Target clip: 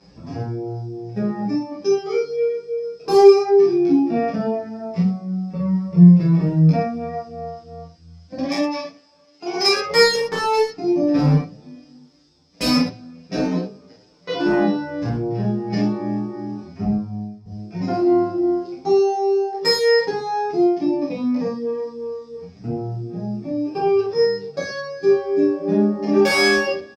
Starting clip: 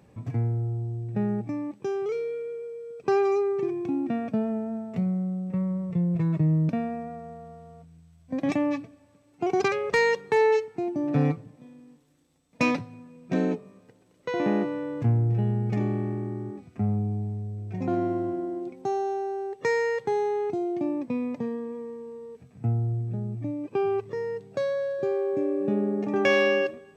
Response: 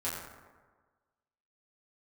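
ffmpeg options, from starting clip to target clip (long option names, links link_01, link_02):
-filter_complex "[0:a]asettb=1/sr,asplit=3[link_01][link_02][link_03];[link_01]atrim=end=8.424[link_04];[link_02]atrim=start=8.42:end=9.76,asetpts=PTS-STARTPTS,afade=type=in:duration=0.004:curve=qsin,afade=type=out:start_time=1.336:duration=0.004:curve=qsin,highpass=frequency=730:poles=1[link_05];[link_03]atrim=start=9.756[link_06];[link_04][link_05]acrossfade=duration=0.004:curve1=hsin:curve2=qsin[link_07];[link_07][link_06]acrossfade=duration=0.004:curve1=qsin:curve2=hsin,asettb=1/sr,asplit=3[link_08][link_09][link_10];[link_08]atrim=end=16.844[link_11];[link_09]atrim=start=16.84:end=17.46,asetpts=PTS-STARTPTS,afade=type=in:duration=0.004:curve=qsin,afade=type=out:start_time=0.616:duration=0.004:curve=qsin,agate=range=-33dB:threshold=-23dB:ratio=3:detection=peak[link_12];[link_10]atrim=start=17.456[link_13];[link_11][link_12]acrossfade=duration=0.004:curve1=hsin:curve2=qsin[link_14];[link_14][link_13]acrossfade=duration=0.004:curve1=qsin:curve2=hsin,lowpass=frequency=5100:width_type=q:width=16,asoftclip=type=hard:threshold=-17dB[link_15];[1:a]atrim=start_sample=2205,atrim=end_sample=3969,asetrate=29988,aresample=44100[link_16];[link_15][link_16]afir=irnorm=-1:irlink=0,asplit=2[link_17][link_18];[link_18]adelay=8.1,afreqshift=2.8[link_19];[link_17][link_19]amix=inputs=2:normalize=1,volume=4dB"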